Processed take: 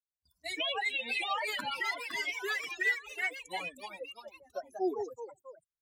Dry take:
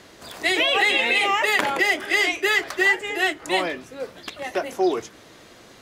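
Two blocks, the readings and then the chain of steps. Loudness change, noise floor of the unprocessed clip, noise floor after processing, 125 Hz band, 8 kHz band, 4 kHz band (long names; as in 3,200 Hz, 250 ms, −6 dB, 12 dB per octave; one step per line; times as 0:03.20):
−13.5 dB, −48 dBFS, below −85 dBFS, can't be measured, −14.5 dB, −13.0 dB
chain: spectral dynamics exaggerated over time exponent 3
noise gate with hold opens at −53 dBFS
delay with pitch and tempo change per echo 686 ms, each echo +2 semitones, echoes 3, each echo −6 dB
level −8 dB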